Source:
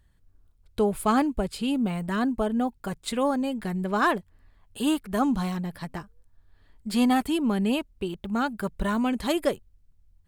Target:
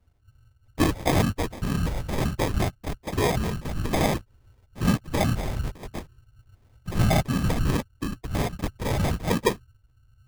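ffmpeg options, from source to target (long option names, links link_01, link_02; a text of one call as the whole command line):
ffmpeg -i in.wav -filter_complex "[0:a]lowpass=12000,acrossover=split=170|1400[link_01][link_02][link_03];[link_02]acrusher=bits=4:mode=log:mix=0:aa=0.000001[link_04];[link_01][link_04][link_03]amix=inputs=3:normalize=0,afftfilt=real='hypot(re,im)*cos(2*PI*random(0))':imag='hypot(re,im)*sin(2*PI*random(1))':win_size=512:overlap=0.75,afreqshift=-130,acrusher=samples=31:mix=1:aa=0.000001,volume=7dB" out.wav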